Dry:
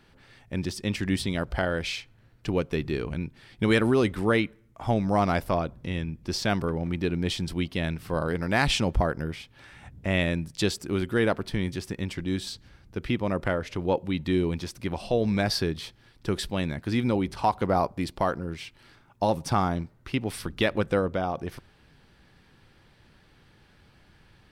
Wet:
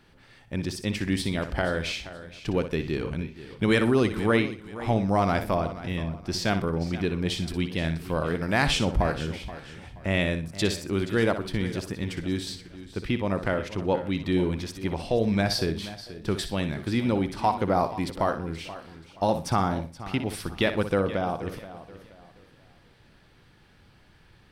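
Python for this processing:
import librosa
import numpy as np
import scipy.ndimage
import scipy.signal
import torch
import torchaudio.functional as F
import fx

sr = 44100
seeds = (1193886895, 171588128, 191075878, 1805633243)

p1 = x + fx.echo_feedback(x, sr, ms=61, feedback_pct=25, wet_db=-10.5, dry=0)
y = fx.echo_warbled(p1, sr, ms=478, feedback_pct=32, rate_hz=2.8, cents=56, wet_db=-15)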